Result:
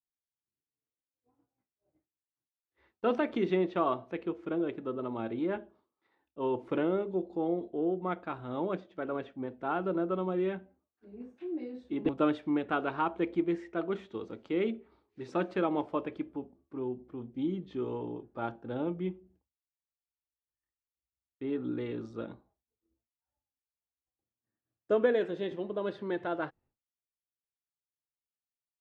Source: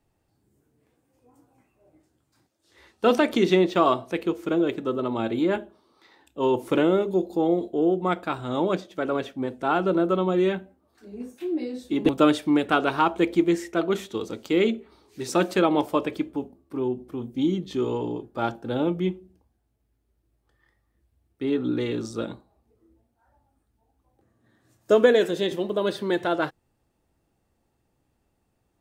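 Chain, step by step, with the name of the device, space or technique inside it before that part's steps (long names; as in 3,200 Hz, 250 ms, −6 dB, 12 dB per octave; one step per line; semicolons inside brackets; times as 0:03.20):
hearing-loss simulation (low-pass filter 2,400 Hz 12 dB per octave; downward expander −51 dBFS)
level −9 dB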